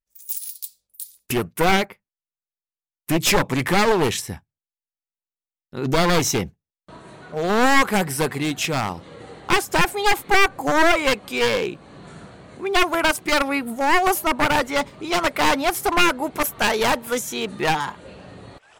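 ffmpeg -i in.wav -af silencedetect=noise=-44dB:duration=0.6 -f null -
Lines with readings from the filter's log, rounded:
silence_start: 1.93
silence_end: 3.08 | silence_duration: 1.15
silence_start: 4.39
silence_end: 5.73 | silence_duration: 1.35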